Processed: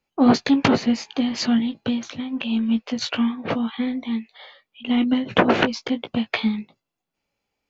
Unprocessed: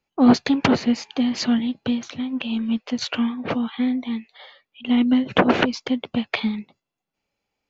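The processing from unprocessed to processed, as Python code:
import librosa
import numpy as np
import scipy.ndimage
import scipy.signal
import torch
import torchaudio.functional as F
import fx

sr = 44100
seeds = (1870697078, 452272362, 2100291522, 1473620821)

y = fx.doubler(x, sr, ms=18.0, db=-8.5)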